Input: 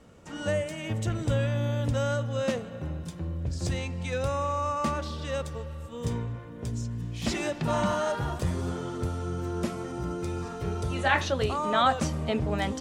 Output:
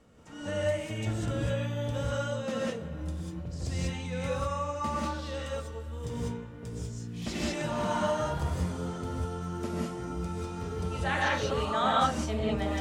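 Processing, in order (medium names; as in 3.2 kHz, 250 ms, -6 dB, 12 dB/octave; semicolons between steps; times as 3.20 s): gated-style reverb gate 220 ms rising, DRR -4.5 dB; reverse; upward compressor, threshold -45 dBFS; reverse; trim -8 dB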